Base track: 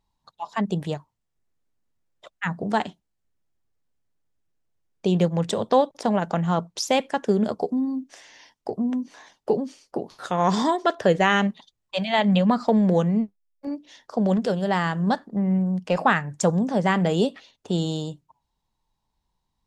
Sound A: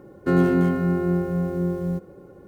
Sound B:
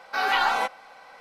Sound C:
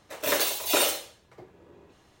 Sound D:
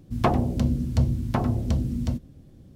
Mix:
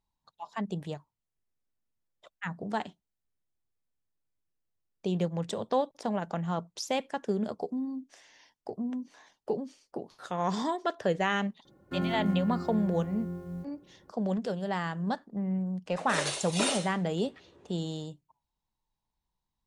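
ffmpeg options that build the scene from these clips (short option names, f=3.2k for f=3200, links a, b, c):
-filter_complex "[0:a]volume=-9dB[a];[1:a]equalizer=f=440:t=o:w=0.55:g=-9[b];[3:a]aresample=22050,aresample=44100[c];[b]atrim=end=2.47,asetpts=PTS-STARTPTS,volume=-12dB,afade=t=in:d=0.004:c=hsin,afade=t=out:st=2.466:d=0.004:c=hsin,adelay=11650[d];[c]atrim=end=2.2,asetpts=PTS-STARTPTS,volume=-5.5dB,afade=t=in:d=0.004:c=hsin,afade=t=out:st=2.196:d=0.004:c=hsin,adelay=15860[e];[a][d][e]amix=inputs=3:normalize=0"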